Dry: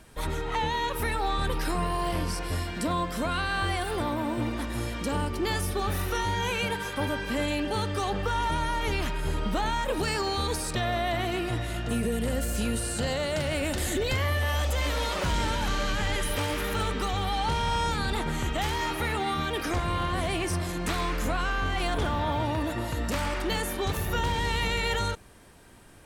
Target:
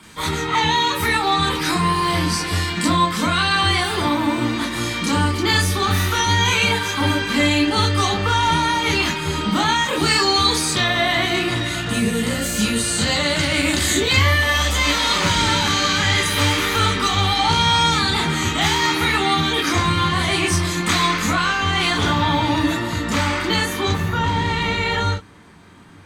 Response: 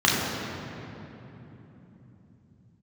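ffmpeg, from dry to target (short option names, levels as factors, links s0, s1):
-filter_complex "[0:a]asetnsamples=n=441:p=0,asendcmd='22.77 highshelf g 3;23.89 highshelf g -6',highshelf=f=2900:g=8.5[s0];[1:a]atrim=start_sample=2205,atrim=end_sample=3087,asetrate=48510,aresample=44100[s1];[s0][s1]afir=irnorm=-1:irlink=0,volume=0.501"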